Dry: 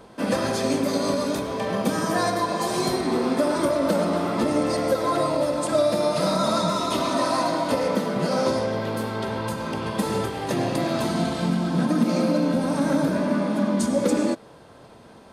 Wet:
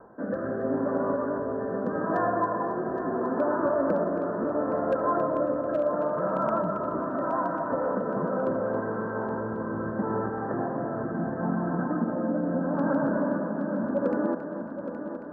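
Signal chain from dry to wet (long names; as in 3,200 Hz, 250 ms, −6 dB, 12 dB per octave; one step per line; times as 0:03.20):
Butterworth low-pass 1,700 Hz 96 dB per octave
low-shelf EQ 250 Hz −9 dB
in parallel at −1.5 dB: downward compressor 5 to 1, threshold −32 dBFS, peak gain reduction 12.5 dB
on the sum: hard clipping −12.5 dBFS, distortion −38 dB
rotating-speaker cabinet horn 0.75 Hz
echo machine with several playback heads 273 ms, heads first and third, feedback 62%, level −10.5 dB
level −3 dB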